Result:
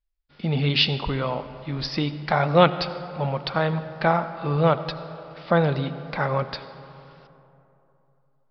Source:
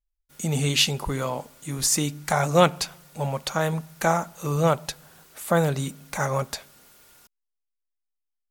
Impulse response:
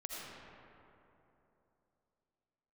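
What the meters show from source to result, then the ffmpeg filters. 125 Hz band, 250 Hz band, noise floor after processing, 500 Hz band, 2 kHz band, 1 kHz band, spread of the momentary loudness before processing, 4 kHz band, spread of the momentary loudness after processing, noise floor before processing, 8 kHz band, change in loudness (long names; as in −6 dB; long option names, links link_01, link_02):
+1.5 dB, +1.5 dB, −65 dBFS, +1.5 dB, +1.5 dB, +1.5 dB, 13 LU, +0.5 dB, 13 LU, −81 dBFS, below −25 dB, +1.0 dB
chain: -filter_complex "[0:a]aresample=11025,aresample=44100,asplit=2[link_01][link_02];[1:a]atrim=start_sample=2205,lowpass=6000[link_03];[link_02][link_03]afir=irnorm=-1:irlink=0,volume=-9.5dB[link_04];[link_01][link_04]amix=inputs=2:normalize=0"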